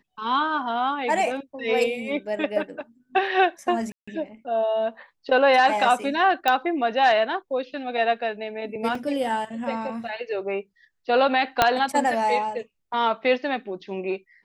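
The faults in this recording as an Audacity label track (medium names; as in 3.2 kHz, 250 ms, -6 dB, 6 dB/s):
3.920000	4.080000	dropout 155 ms
6.480000	6.480000	pop -8 dBFS
8.950000	8.950000	dropout 3.3 ms
11.620000	11.620000	pop -2 dBFS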